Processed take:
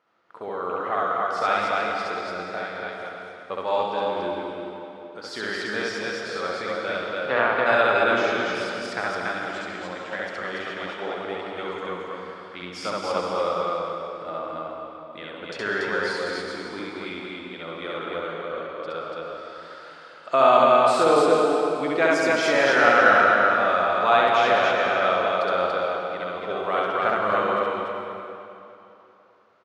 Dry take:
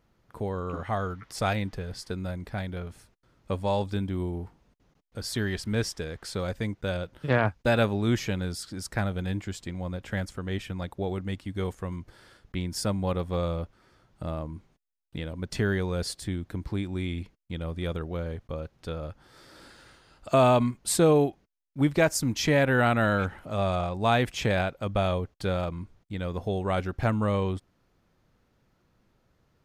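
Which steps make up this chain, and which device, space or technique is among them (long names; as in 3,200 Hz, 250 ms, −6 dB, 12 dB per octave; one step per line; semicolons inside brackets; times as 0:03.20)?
station announcement (band-pass filter 460–3,900 Hz; parametric band 1,300 Hz +7 dB 0.36 octaves; loudspeakers that aren't time-aligned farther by 23 metres 0 dB, 98 metres −1 dB; convolution reverb RT60 3.0 s, pre-delay 95 ms, DRR 1 dB)
level +1 dB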